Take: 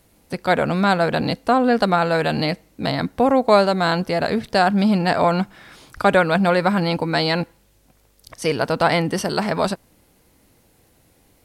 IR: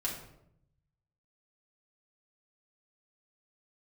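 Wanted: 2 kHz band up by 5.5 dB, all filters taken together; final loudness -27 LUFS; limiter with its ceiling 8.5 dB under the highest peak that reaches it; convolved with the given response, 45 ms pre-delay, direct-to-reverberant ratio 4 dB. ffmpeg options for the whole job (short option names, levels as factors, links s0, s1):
-filter_complex "[0:a]equalizer=f=2000:t=o:g=7.5,alimiter=limit=0.335:level=0:latency=1,asplit=2[s0][s1];[1:a]atrim=start_sample=2205,adelay=45[s2];[s1][s2]afir=irnorm=-1:irlink=0,volume=0.447[s3];[s0][s3]amix=inputs=2:normalize=0,volume=0.398"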